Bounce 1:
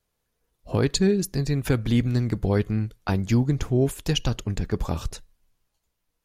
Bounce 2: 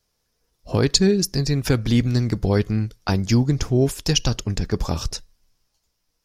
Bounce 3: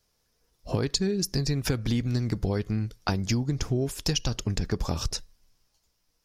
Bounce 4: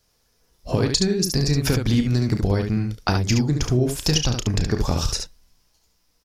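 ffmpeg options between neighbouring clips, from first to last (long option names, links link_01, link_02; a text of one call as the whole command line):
ffmpeg -i in.wav -af "equalizer=frequency=5300:width_type=o:width=0.49:gain=12,volume=3dB" out.wav
ffmpeg -i in.wav -af "acompressor=threshold=-23dB:ratio=6" out.wav
ffmpeg -i in.wav -af "aecho=1:1:33|71:0.299|0.531,volume=5.5dB" out.wav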